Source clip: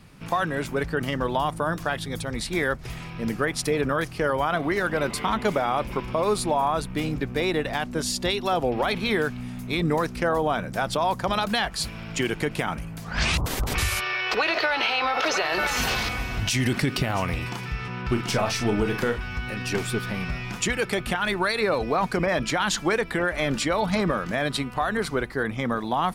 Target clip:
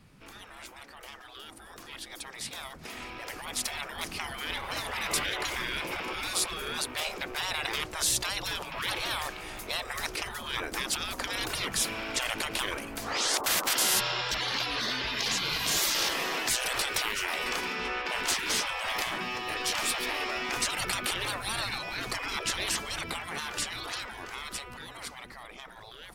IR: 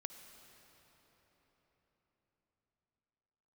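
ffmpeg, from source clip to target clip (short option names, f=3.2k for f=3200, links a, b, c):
-filter_complex "[0:a]afftfilt=real='re*lt(hypot(re,im),0.0631)':imag='im*lt(hypot(re,im),0.0631)':win_size=1024:overlap=0.75,dynaudnorm=f=780:g=9:m=14dB,asplit=2[a][b];[b]asetrate=58866,aresample=44100,atempo=0.749154,volume=-17dB[c];[a][c]amix=inputs=2:normalize=0,volume=-7.5dB"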